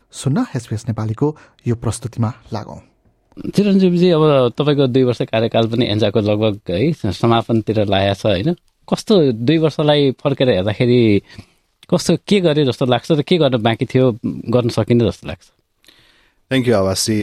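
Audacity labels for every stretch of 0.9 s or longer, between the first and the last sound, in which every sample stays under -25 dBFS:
15.340000	16.510000	silence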